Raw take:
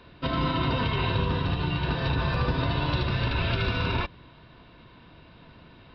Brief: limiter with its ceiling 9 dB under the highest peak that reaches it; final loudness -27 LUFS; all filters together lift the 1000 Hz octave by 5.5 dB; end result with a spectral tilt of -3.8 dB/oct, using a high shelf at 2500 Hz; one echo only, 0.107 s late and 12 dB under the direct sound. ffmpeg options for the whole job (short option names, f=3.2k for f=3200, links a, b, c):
-af "equalizer=f=1k:t=o:g=5.5,highshelf=f=2.5k:g=3.5,alimiter=limit=-22dB:level=0:latency=1,aecho=1:1:107:0.251,volume=3.5dB"